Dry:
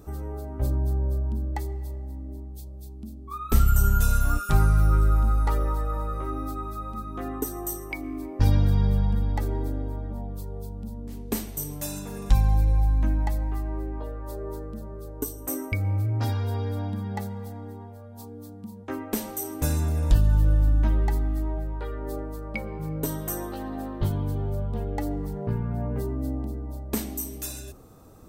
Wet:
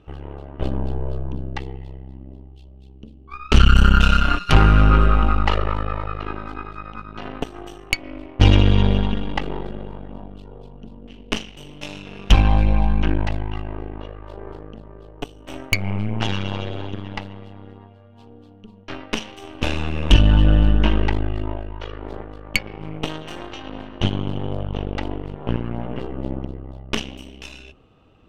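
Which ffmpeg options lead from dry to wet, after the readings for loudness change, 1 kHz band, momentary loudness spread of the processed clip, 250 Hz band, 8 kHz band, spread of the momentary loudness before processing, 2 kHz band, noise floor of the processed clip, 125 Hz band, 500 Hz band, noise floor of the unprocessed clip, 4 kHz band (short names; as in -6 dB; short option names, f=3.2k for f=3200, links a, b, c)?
+6.0 dB, +7.5 dB, 22 LU, +6.5 dB, -3.5 dB, 16 LU, +12.5 dB, -46 dBFS, +3.5 dB, +5.0 dB, -41 dBFS, +17.5 dB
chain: -af "lowpass=f=2.9k:t=q:w=12,aeval=exprs='0.501*(cos(1*acos(clip(val(0)/0.501,-1,1)))-cos(1*PI/2))+0.0562*(cos(5*acos(clip(val(0)/0.501,-1,1)))-cos(5*PI/2))+0.0891*(cos(7*acos(clip(val(0)/0.501,-1,1)))-cos(7*PI/2))+0.0708*(cos(8*acos(clip(val(0)/0.501,-1,1)))-cos(8*PI/2))':c=same,volume=5dB"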